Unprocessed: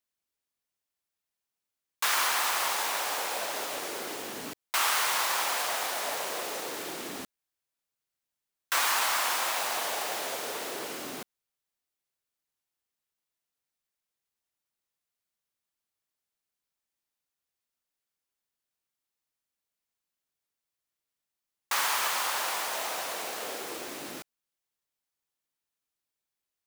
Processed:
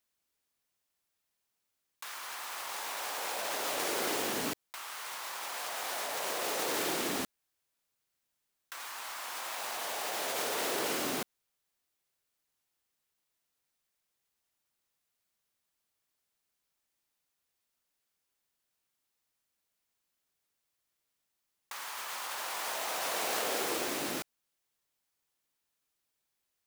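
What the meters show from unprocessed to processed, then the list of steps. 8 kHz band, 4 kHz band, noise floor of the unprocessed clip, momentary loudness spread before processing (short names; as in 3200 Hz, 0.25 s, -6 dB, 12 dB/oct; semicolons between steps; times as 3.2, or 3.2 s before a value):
-5.0 dB, -5.5 dB, under -85 dBFS, 13 LU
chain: negative-ratio compressor -37 dBFS, ratio -1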